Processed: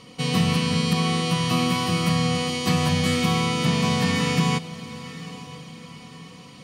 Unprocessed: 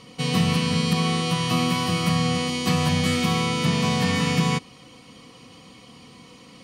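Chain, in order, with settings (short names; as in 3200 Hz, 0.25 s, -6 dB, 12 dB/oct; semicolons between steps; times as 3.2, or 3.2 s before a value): diffused feedback echo 0.92 s, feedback 44%, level -16 dB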